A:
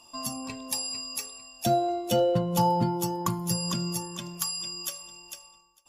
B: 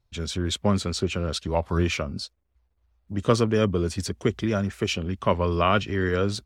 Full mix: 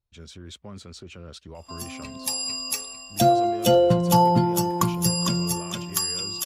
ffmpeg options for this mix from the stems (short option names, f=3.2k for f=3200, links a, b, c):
-filter_complex "[0:a]dynaudnorm=f=130:g=11:m=12dB,adelay=1550,volume=-4dB[a];[1:a]alimiter=limit=-18.5dB:level=0:latency=1:release=22,volume=-13dB[b];[a][b]amix=inputs=2:normalize=0"